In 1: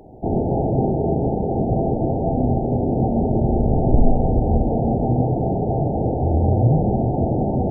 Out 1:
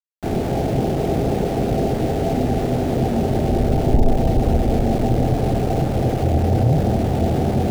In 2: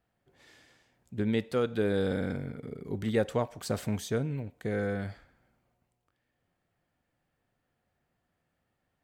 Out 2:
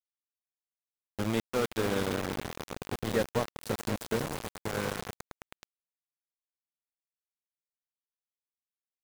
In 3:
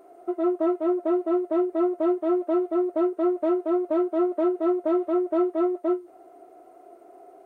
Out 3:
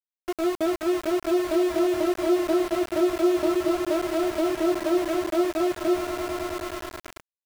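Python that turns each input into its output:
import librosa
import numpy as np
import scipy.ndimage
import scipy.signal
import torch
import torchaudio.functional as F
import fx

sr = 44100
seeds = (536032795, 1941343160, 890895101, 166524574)

y = fx.echo_swell(x, sr, ms=106, loudest=5, wet_db=-13.5)
y = np.where(np.abs(y) >= 10.0 ** (-27.0 / 20.0), y, 0.0)
y = y * librosa.db_to_amplitude(-1.0)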